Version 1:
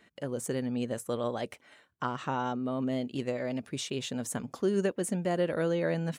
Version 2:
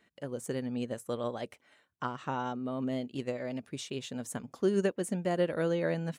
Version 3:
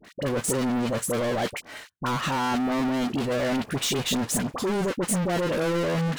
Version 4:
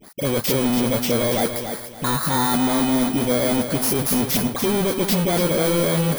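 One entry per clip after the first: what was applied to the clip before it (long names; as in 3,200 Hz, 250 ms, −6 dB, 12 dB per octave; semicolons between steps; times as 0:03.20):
expander for the loud parts 1.5 to 1, over −39 dBFS; level +1 dB
brickwall limiter −29 dBFS, peak gain reduction 11.5 dB; leveller curve on the samples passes 5; all-pass dispersion highs, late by 47 ms, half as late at 1,100 Hz; level +6 dB
samples in bit-reversed order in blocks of 16 samples; feedback echo at a low word length 285 ms, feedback 35%, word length 8 bits, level −7.5 dB; level +5 dB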